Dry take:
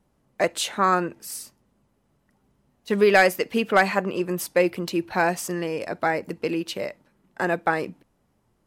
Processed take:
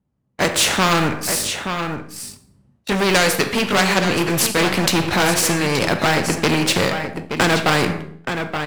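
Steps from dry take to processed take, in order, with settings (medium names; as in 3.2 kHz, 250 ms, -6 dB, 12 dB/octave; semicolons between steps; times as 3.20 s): sawtooth pitch modulation -1.5 st, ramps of 1159 ms; low-pass 11 kHz 12 dB/octave; gate -49 dBFS, range -18 dB; high-pass 68 Hz 12 dB/octave; tone controls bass +13 dB, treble -4 dB; level rider gain up to 16 dB; waveshaping leveller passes 2; Schroeder reverb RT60 0.46 s, combs from 29 ms, DRR 13 dB; flange 0.68 Hz, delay 7.2 ms, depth 5.9 ms, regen +85%; on a send: delay 875 ms -14.5 dB; on the sum: spectrum-flattening compressor 2:1; trim +2.5 dB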